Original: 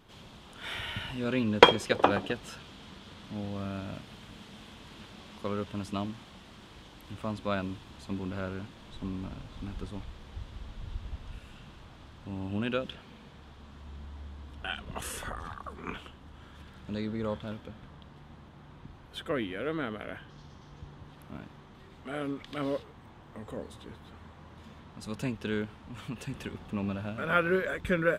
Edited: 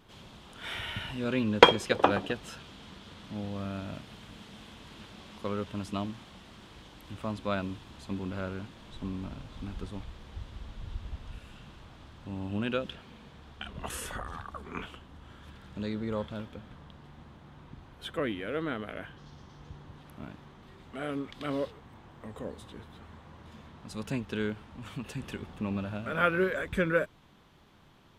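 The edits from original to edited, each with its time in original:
13.61–14.73 s: delete

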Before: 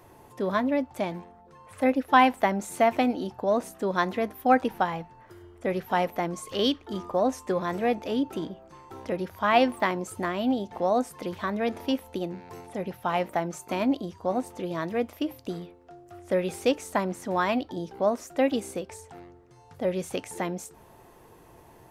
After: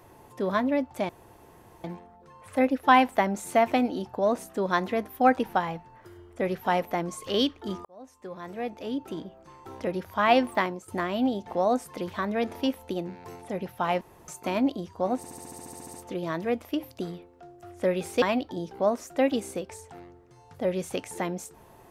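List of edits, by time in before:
1.09 s: insert room tone 0.75 s
7.10–9.00 s: fade in
9.87–10.13 s: fade out, to -16.5 dB
13.26–13.53 s: room tone
14.42 s: stutter 0.07 s, 12 plays
16.70–17.42 s: delete

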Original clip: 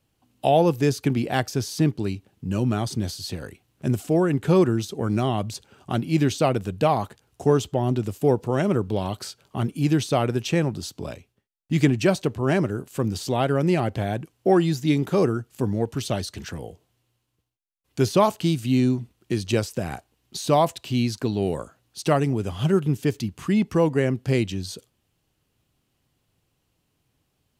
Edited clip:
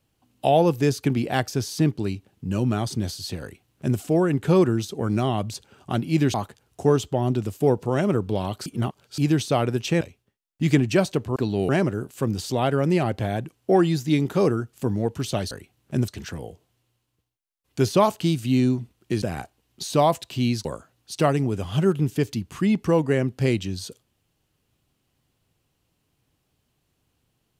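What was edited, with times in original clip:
3.42–3.99 s: copy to 16.28 s
6.34–6.95 s: delete
9.27–9.79 s: reverse
10.62–11.11 s: delete
19.42–19.76 s: delete
21.19–21.52 s: move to 12.46 s

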